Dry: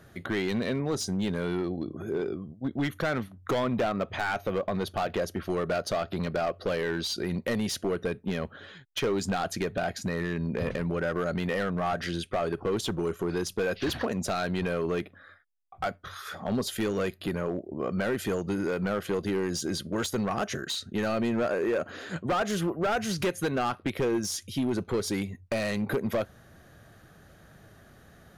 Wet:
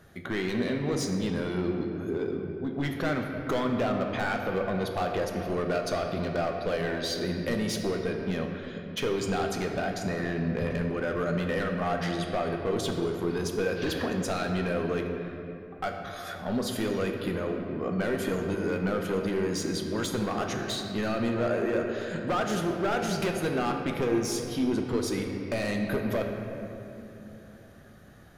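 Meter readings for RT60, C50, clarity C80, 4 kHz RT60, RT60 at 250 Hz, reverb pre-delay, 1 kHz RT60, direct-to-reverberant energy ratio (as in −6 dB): 2.9 s, 3.5 dB, 4.5 dB, 1.7 s, 3.9 s, 4 ms, 2.5 s, 2.0 dB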